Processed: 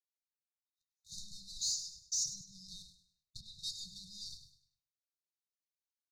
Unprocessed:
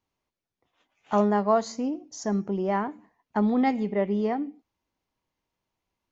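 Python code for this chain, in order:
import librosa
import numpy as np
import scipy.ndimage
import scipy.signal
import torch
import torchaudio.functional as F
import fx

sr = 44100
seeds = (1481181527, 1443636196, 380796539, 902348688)

p1 = np.diff(x, prepend=0.0)
p2 = fx.level_steps(p1, sr, step_db=12, at=(2.26, 3.59))
p3 = fx.leveller(p2, sr, passes=5)
p4 = fx.rider(p3, sr, range_db=10, speed_s=2.0)
p5 = fx.brickwall_bandstop(p4, sr, low_hz=170.0, high_hz=3600.0)
p6 = fx.air_absorb(p5, sr, metres=60.0)
p7 = p6 + fx.echo_feedback(p6, sr, ms=101, feedback_pct=36, wet_db=-11.5, dry=0)
y = p7 * librosa.db_to_amplitude(3.5)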